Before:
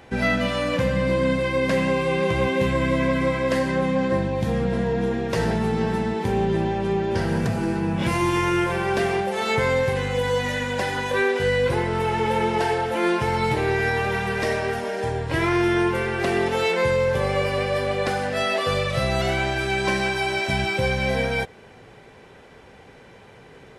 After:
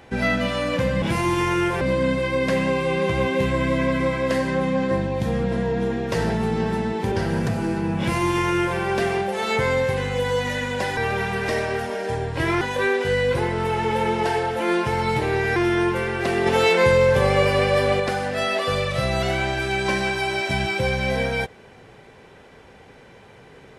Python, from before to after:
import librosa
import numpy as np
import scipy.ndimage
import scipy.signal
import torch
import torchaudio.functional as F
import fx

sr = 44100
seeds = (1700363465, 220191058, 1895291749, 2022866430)

y = fx.edit(x, sr, fx.cut(start_s=6.33, length_s=0.78),
    fx.duplicate(start_s=7.98, length_s=0.79, to_s=1.02),
    fx.move(start_s=13.91, length_s=1.64, to_s=10.96),
    fx.clip_gain(start_s=16.45, length_s=1.54, db=4.5), tone=tone)